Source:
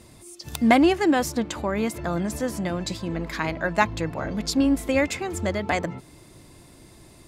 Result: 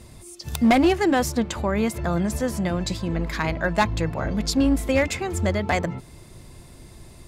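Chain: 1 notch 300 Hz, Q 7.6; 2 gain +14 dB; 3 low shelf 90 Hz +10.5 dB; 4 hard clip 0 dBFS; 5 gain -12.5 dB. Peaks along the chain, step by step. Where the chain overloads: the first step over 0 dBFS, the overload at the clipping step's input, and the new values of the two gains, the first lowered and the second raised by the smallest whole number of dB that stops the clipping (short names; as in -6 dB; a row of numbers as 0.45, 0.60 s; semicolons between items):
-4.5, +9.5, +10.0, 0.0, -12.5 dBFS; step 2, 10.0 dB; step 2 +4 dB, step 5 -2.5 dB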